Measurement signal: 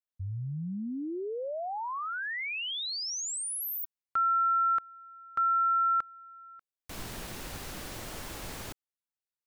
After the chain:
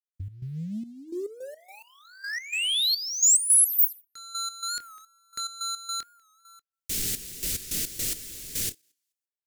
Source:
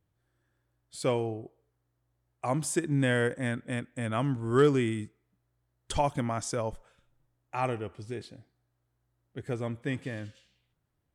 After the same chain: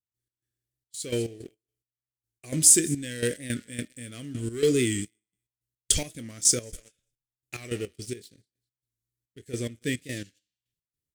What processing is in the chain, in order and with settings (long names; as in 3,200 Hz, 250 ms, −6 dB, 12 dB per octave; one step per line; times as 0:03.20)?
double-tracking delay 25 ms −13 dB
hum removal 304.1 Hz, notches 22
on a send: feedback echo with a high-pass in the loop 200 ms, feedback 20%, high-pass 580 Hz, level −21 dB
on the sum: noise gate −52 dBFS, range −8 dB
dynamic equaliser 130 Hz, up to −4 dB, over −44 dBFS, Q 1.2
leveller curve on the samples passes 2
drawn EQ curve 440 Hz 0 dB, 890 Hz −23 dB, 1,900 Hz 0 dB, 7,300 Hz +14 dB
gate pattern ".x.xxx..x.x.x.." 107 BPM −12 dB
wow of a warped record 45 rpm, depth 100 cents
level −2.5 dB